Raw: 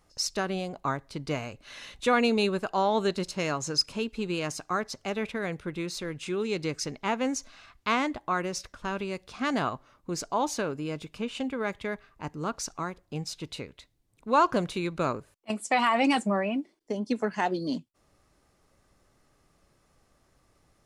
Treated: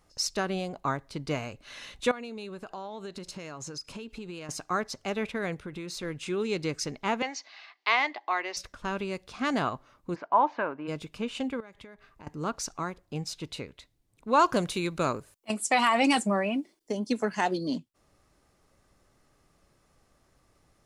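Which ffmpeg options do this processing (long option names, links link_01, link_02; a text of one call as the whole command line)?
ffmpeg -i in.wav -filter_complex "[0:a]asettb=1/sr,asplit=3[link_01][link_02][link_03];[link_01]atrim=end=2.114[link_04];[link_02]atrim=start=2.11:end=4.49,asetpts=PTS-STARTPTS,afade=type=in:duration=0.004:curve=qsin,afade=type=out:start_time=2.376:duration=0.004:curve=qsin,acompressor=threshold=-36dB:ratio=8:attack=3.2:release=140:knee=1:detection=peak[link_05];[link_03]atrim=start=4.486[link_06];[link_04][link_05]acrossfade=duration=0.004:curve1=hsin:curve2=qsin[link_07];[link_07][link_06]acrossfade=duration=0.004:curve1=qsin:curve2=hsin,asettb=1/sr,asplit=3[link_08][link_09][link_10];[link_08]atrim=end=5.544[link_11];[link_09]atrim=start=5.54:end=6.03,asetpts=PTS-STARTPTS,afade=type=in:duration=0.004:curve=qsin,afade=type=out:start_time=0.486:duration=0.004:curve=qsin,acompressor=threshold=-34dB:ratio=5:attack=3.2:release=140:knee=1:detection=peak[link_12];[link_10]atrim=start=6.026[link_13];[link_11][link_12]acrossfade=duration=0.004:curve1=hsin:curve2=qsin[link_14];[link_14][link_13]acrossfade=duration=0.004:curve1=qsin:curve2=hsin,asettb=1/sr,asplit=3[link_15][link_16][link_17];[link_15]atrim=end=7.224[link_18];[link_16]atrim=start=7.22:end=8.57,asetpts=PTS-STARTPTS,afade=type=in:duration=0.004:curve=qsin,afade=type=out:start_time=1.346:duration=0.004:curve=qsin,highpass=frequency=410:width=0.5412,highpass=frequency=410:width=1.3066,equalizer=frequency=520:width_type=q:width=4:gain=-8,equalizer=frequency=790:width_type=q:width=4:gain=5,equalizer=frequency=1400:width_type=q:width=4:gain=-6,equalizer=frequency=2000:width_type=q:width=4:gain=9,equalizer=frequency=3000:width_type=q:width=4:gain=3,equalizer=frequency=4500:width_type=q:width=4:gain=6,lowpass=frequency=5300:width=0.5412,lowpass=frequency=5300:width=1.3066[link_19];[link_17]atrim=start=8.566[link_20];[link_18][link_19]acrossfade=duration=0.004:curve1=hsin:curve2=qsin[link_21];[link_21][link_20]acrossfade=duration=0.004:curve1=qsin:curve2=hsin,asplit=3[link_22][link_23][link_24];[link_22]afade=type=out:start_time=10.14:duration=0.02[link_25];[link_23]highpass=290,equalizer=frequency=430:width_type=q:width=4:gain=-6,equalizer=frequency=640:width_type=q:width=4:gain=3,equalizer=frequency=970:width_type=q:width=4:gain=9,equalizer=frequency=1600:width_type=q:width=4:gain=4,lowpass=frequency=2500:width=0.5412,lowpass=frequency=2500:width=1.3066,afade=type=in:start_time=10.14:duration=0.02,afade=type=out:start_time=10.87:duration=0.02[link_26];[link_24]afade=type=in:start_time=10.87:duration=0.02[link_27];[link_25][link_26][link_27]amix=inputs=3:normalize=0,asettb=1/sr,asplit=3[link_28][link_29][link_30];[link_28]atrim=end=11.604[link_31];[link_29]atrim=start=11.6:end=12.27,asetpts=PTS-STARTPTS,afade=type=in:duration=0.004:curve=qsin,afade=type=out:start_time=0.666:duration=0.004:curve=qsin,acompressor=threshold=-44dB:ratio=10:attack=3.2:release=140:knee=1:detection=peak[link_32];[link_30]atrim=start=12.266[link_33];[link_31][link_32]acrossfade=duration=0.004:curve1=hsin:curve2=qsin[link_34];[link_34][link_33]acrossfade=duration=0.004:curve1=qsin:curve2=hsin,asettb=1/sr,asplit=3[link_35][link_36][link_37];[link_35]atrim=end=14.394[link_38];[link_36]atrim=start=14.39:end=17.58,asetpts=PTS-STARTPTS,afade=type=in:duration=0.004:curve=qsin,afade=type=out:start_time=3.186:duration=0.004:curve=qsin,highshelf=frequency=5000:gain=9.5[link_39];[link_37]atrim=start=17.576[link_40];[link_38][link_39]acrossfade=duration=0.004:curve1=hsin:curve2=qsin[link_41];[link_41][link_40]acrossfade=duration=0.004:curve1=qsin:curve2=hsin" out.wav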